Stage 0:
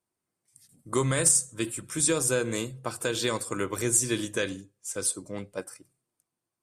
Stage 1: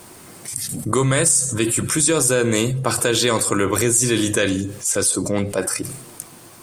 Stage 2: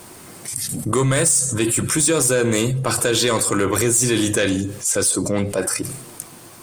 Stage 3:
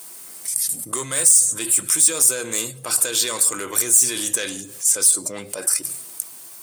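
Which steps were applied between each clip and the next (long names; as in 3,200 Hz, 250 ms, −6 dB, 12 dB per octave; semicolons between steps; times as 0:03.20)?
envelope flattener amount 70%; level +3.5 dB
soft clipping −10.5 dBFS, distortion −18 dB; level +1.5 dB
RIAA equalisation recording; level −8.5 dB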